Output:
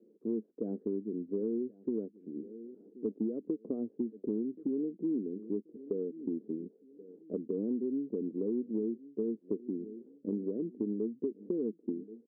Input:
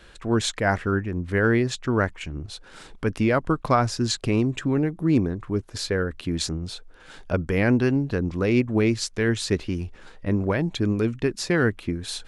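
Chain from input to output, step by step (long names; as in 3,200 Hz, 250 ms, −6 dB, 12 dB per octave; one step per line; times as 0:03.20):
Chebyshev band-pass filter 210–450 Hz, order 3
on a send: repeating echo 1,079 ms, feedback 32%, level −23 dB
on the sum: downward compressor 6 to 1, threshold −29 dBFS, peak gain reduction 11.5 dB
level −1.5 dB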